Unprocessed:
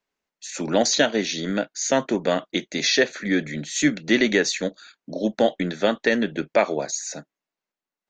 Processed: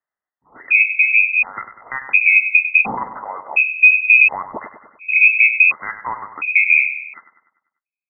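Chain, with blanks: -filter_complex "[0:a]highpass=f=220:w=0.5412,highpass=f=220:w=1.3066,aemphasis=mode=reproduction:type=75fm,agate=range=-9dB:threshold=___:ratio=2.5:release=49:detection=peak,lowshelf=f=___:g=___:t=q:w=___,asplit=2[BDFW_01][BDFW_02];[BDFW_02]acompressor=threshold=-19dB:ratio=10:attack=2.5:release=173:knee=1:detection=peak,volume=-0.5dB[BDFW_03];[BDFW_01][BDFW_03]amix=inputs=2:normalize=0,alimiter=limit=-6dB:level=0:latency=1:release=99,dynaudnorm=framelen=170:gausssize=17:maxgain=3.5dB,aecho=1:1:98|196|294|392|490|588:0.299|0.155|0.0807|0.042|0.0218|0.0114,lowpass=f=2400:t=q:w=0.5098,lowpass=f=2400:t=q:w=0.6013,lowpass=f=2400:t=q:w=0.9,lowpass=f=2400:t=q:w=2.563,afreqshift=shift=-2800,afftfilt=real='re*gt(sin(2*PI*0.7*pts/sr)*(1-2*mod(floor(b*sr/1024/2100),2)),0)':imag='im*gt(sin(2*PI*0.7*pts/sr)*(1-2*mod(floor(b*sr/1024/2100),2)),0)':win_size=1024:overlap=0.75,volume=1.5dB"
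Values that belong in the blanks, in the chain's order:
-36dB, 450, 9, 1.5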